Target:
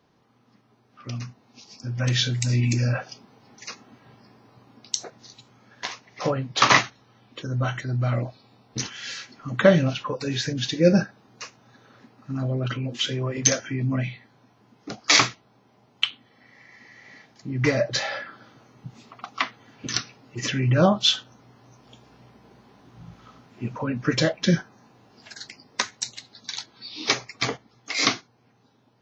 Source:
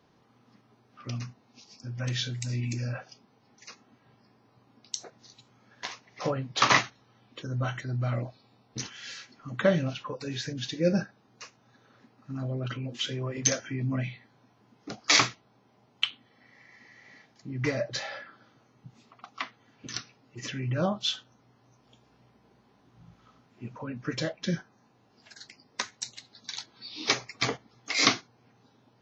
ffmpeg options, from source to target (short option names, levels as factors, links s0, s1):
-af "dynaudnorm=f=270:g=13:m=3.16"